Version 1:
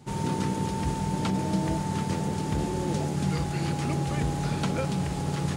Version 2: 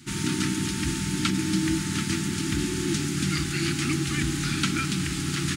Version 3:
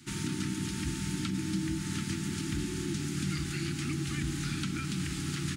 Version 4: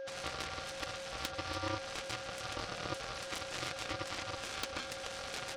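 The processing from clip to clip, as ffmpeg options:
-af "firequalizer=gain_entry='entry(170,0);entry(330,9);entry(500,-29);entry(1300,8);entry(2300,11)':delay=0.05:min_phase=1,volume=-1dB"
-filter_complex "[0:a]acrossover=split=240[a][b];[b]acompressor=threshold=-31dB:ratio=6[c];[a][c]amix=inputs=2:normalize=0,volume=-5dB"
-af "aeval=exprs='val(0)+0.0158*sin(2*PI*540*n/s)':c=same,afftfilt=real='re*between(b*sr/4096,280,5500)':imag='im*between(b*sr/4096,280,5500)':win_size=4096:overlap=0.75,aeval=exprs='0.0891*(cos(1*acos(clip(val(0)/0.0891,-1,1)))-cos(1*PI/2))+0.0251*(cos(7*acos(clip(val(0)/0.0891,-1,1)))-cos(7*PI/2))':c=same"

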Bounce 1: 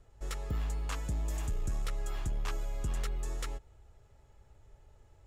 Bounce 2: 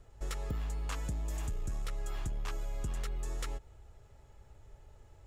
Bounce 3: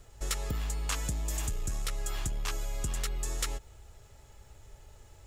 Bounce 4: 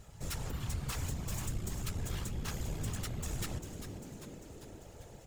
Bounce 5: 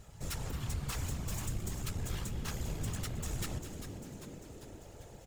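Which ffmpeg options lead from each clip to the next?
-af "acompressor=threshold=-36dB:ratio=6,volume=3dB"
-af "highshelf=f=2.5k:g=11,volume=2.5dB"
-filter_complex "[0:a]asoftclip=type=hard:threshold=-35.5dB,asplit=9[a][b][c][d][e][f][g][h][i];[b]adelay=396,afreqshift=-120,volume=-9.5dB[j];[c]adelay=792,afreqshift=-240,volume=-13.8dB[k];[d]adelay=1188,afreqshift=-360,volume=-18.1dB[l];[e]adelay=1584,afreqshift=-480,volume=-22.4dB[m];[f]adelay=1980,afreqshift=-600,volume=-26.7dB[n];[g]adelay=2376,afreqshift=-720,volume=-31dB[o];[h]adelay=2772,afreqshift=-840,volume=-35.3dB[p];[i]adelay=3168,afreqshift=-960,volume=-39.6dB[q];[a][j][k][l][m][n][o][p][q]amix=inputs=9:normalize=0,afftfilt=real='hypot(re,im)*cos(2*PI*random(0))':imag='hypot(re,im)*sin(2*PI*random(1))':win_size=512:overlap=0.75,volume=6dB"
-af "aecho=1:1:219:0.2"

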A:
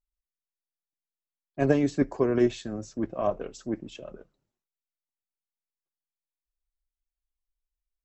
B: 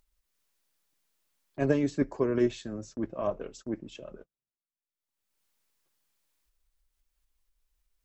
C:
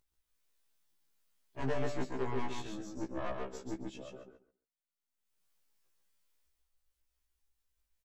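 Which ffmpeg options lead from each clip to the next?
-af "agate=range=-31dB:threshold=-46dB:ratio=16:detection=peak,acompressor=mode=upward:threshold=-36dB:ratio=2.5,bandreject=f=730:w=12,volume=-3dB"
-filter_complex "[0:a]aeval=exprs='(tanh(31.6*val(0)+0.7)-tanh(0.7))/31.6':c=same,asplit=2[a][b];[b]aecho=0:1:137|274|411:0.631|0.114|0.0204[c];[a][c]amix=inputs=2:normalize=0,afftfilt=real='re*1.73*eq(mod(b,3),0)':imag='im*1.73*eq(mod(b,3),0)':win_size=2048:overlap=0.75,volume=1.5dB"

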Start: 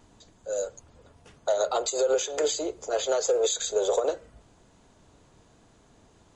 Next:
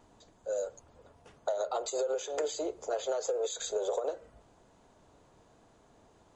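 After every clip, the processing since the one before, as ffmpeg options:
-af "equalizer=f=700:w=0.6:g=7,acompressor=threshold=-22dB:ratio=6,volume=-7dB"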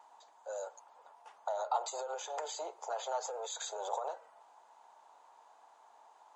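-af "alimiter=level_in=3dB:limit=-24dB:level=0:latency=1:release=32,volume=-3dB,highpass=f=870:t=q:w=4.9,volume=-3dB"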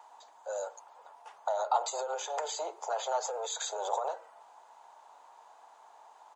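-filter_complex "[0:a]acrossover=split=270[a][b];[a]adelay=80[c];[c][b]amix=inputs=2:normalize=0,volume=5dB"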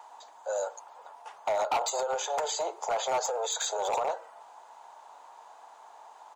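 -af "asoftclip=type=hard:threshold=-28.5dB,volume=5dB"

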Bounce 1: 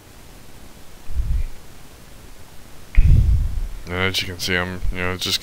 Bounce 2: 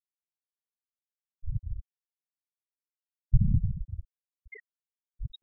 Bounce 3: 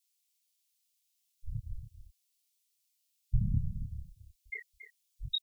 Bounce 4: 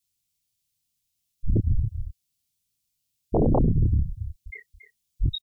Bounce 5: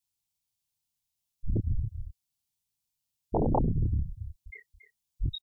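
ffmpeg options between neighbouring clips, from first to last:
-filter_complex "[0:a]acrossover=split=310[a][b];[a]adelay=360[c];[c][b]amix=inputs=2:normalize=0,afftfilt=real='hypot(re,im)*cos(2*PI*random(0))':imag='hypot(re,im)*sin(2*PI*random(1))':win_size=512:overlap=0.75,afftfilt=real='re*gte(hypot(re,im),0.355)':imag='im*gte(hypot(re,im),0.355)':win_size=1024:overlap=0.75,volume=-4.5dB"
-af "aexciter=amount=15.8:drive=2.5:freq=2.2k,flanger=delay=22.5:depth=5.7:speed=0.39,aecho=1:1:279:0.266,volume=-3.5dB"
-filter_complex "[0:a]equalizer=f=100:t=o:w=1.2:g=4.5,acrossover=split=210|300|1300[a][b][c][d];[a]aeval=exprs='0.158*sin(PI/2*6.31*val(0)/0.158)':c=same[e];[c]asplit=2[f][g];[g]adelay=37,volume=-13dB[h];[f][h]amix=inputs=2:normalize=0[i];[e][b][i][d]amix=inputs=4:normalize=0"
-af "equalizer=f=880:w=3.1:g=10,volume=-6.5dB"

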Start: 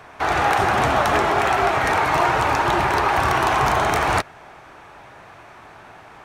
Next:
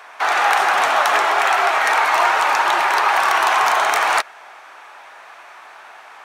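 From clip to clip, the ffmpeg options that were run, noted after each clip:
-af "highpass=810,volume=5dB"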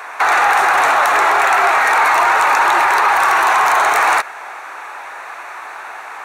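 -filter_complex "[0:a]equalizer=f=200:t=o:w=0.33:g=-10,equalizer=f=630:t=o:w=0.33:g=-4,equalizer=f=3.15k:t=o:w=0.33:g=-10,equalizer=f=5k:t=o:w=0.33:g=-8,asplit=2[a][b];[b]acontrast=60,volume=2dB[c];[a][c]amix=inputs=2:normalize=0,alimiter=limit=-5.5dB:level=0:latency=1:release=29"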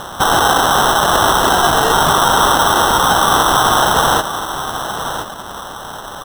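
-filter_complex "[0:a]acrossover=split=690[a][b];[b]acompressor=mode=upward:threshold=-26dB:ratio=2.5[c];[a][c]amix=inputs=2:normalize=0,acrusher=samples=19:mix=1:aa=0.000001,aecho=1:1:1025:0.316"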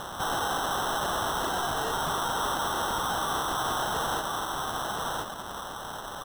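-af "alimiter=limit=-11dB:level=0:latency=1:release=39,asoftclip=type=tanh:threshold=-16dB,volume=-8.5dB"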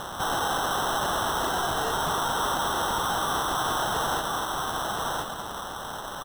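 -af "aecho=1:1:241:0.282,volume=2dB"

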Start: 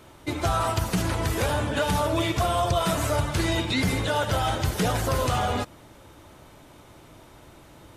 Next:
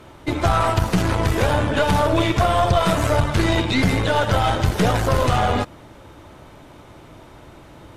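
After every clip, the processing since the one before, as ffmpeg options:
-af "aemphasis=mode=reproduction:type=cd,aeval=exprs='0.211*(cos(1*acos(clip(val(0)/0.211,-1,1)))-cos(1*PI/2))+0.0237*(cos(4*acos(clip(val(0)/0.211,-1,1)))-cos(4*PI/2))':c=same,volume=6dB"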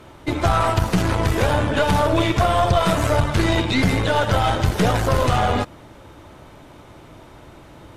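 -af anull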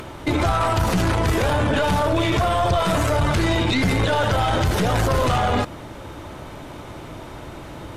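-af "acompressor=mode=upward:threshold=-40dB:ratio=2.5,alimiter=limit=-18.5dB:level=0:latency=1:release=15,volume=7dB"

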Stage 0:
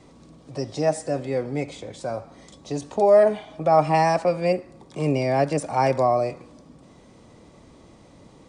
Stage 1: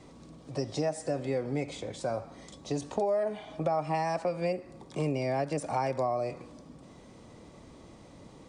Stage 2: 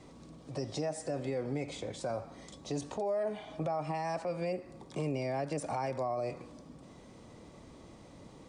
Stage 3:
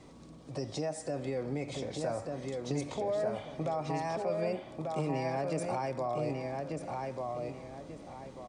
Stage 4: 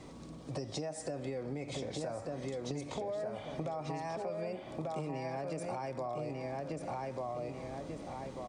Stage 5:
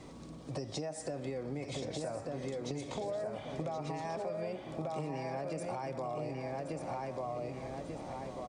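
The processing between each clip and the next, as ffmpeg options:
-af "acompressor=threshold=-25dB:ratio=6,volume=-1.5dB"
-af "alimiter=level_in=0.5dB:limit=-24dB:level=0:latency=1:release=14,volume=-0.5dB,volume=-1.5dB"
-filter_complex "[0:a]asplit=2[a][b];[b]adelay=1191,lowpass=f=4.1k:p=1,volume=-3dB,asplit=2[c][d];[d]adelay=1191,lowpass=f=4.1k:p=1,volume=0.33,asplit=2[e][f];[f]adelay=1191,lowpass=f=4.1k:p=1,volume=0.33,asplit=2[g][h];[h]adelay=1191,lowpass=f=4.1k:p=1,volume=0.33[i];[a][c][e][g][i]amix=inputs=5:normalize=0"
-af "acompressor=threshold=-39dB:ratio=6,volume=3.5dB"
-af "aecho=1:1:1074:0.282"

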